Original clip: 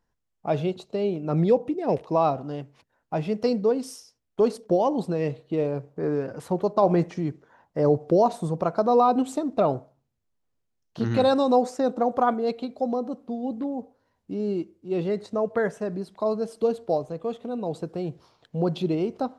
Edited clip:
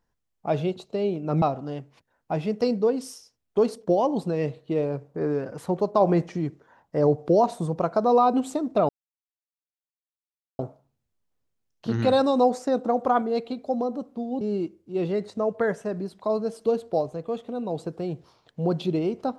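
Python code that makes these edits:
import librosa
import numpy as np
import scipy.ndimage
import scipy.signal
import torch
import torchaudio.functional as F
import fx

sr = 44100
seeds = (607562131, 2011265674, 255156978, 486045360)

y = fx.edit(x, sr, fx.cut(start_s=1.42, length_s=0.82),
    fx.insert_silence(at_s=9.71, length_s=1.7),
    fx.cut(start_s=13.53, length_s=0.84), tone=tone)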